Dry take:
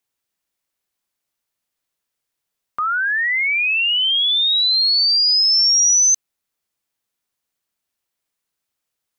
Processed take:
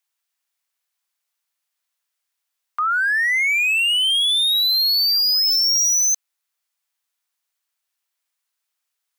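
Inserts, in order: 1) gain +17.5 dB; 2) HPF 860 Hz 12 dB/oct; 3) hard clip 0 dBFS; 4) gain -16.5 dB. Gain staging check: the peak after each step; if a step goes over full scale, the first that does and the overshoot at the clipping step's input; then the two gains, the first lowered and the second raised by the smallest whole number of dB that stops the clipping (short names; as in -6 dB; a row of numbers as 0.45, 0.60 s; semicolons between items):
+7.0, +7.0, 0.0, -16.5 dBFS; step 1, 7.0 dB; step 1 +10.5 dB, step 4 -9.5 dB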